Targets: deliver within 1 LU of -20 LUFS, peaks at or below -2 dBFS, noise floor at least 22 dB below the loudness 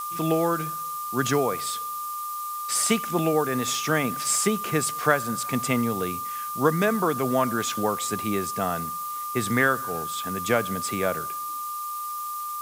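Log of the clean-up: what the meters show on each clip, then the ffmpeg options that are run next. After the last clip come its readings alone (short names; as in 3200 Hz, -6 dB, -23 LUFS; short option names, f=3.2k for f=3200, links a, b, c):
steady tone 1200 Hz; tone level -30 dBFS; noise floor -32 dBFS; noise floor target -48 dBFS; loudness -25.5 LUFS; peak -6.0 dBFS; loudness target -20.0 LUFS
-> -af "bandreject=f=1.2k:w=30"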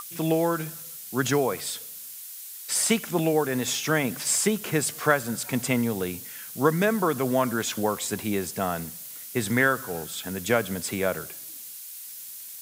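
steady tone none; noise floor -41 dBFS; noise floor target -48 dBFS
-> -af "afftdn=nr=7:nf=-41"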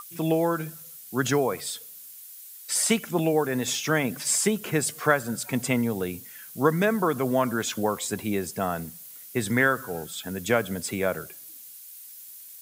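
noise floor -45 dBFS; noise floor target -48 dBFS
-> -af "afftdn=nr=6:nf=-45"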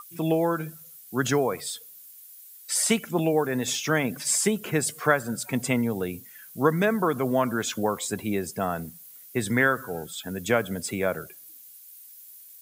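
noise floor -48 dBFS; loudness -26.0 LUFS; peak -7.0 dBFS; loudness target -20.0 LUFS
-> -af "volume=6dB,alimiter=limit=-2dB:level=0:latency=1"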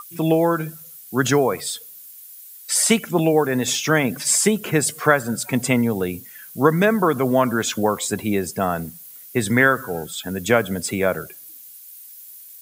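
loudness -20.0 LUFS; peak -2.0 dBFS; noise floor -42 dBFS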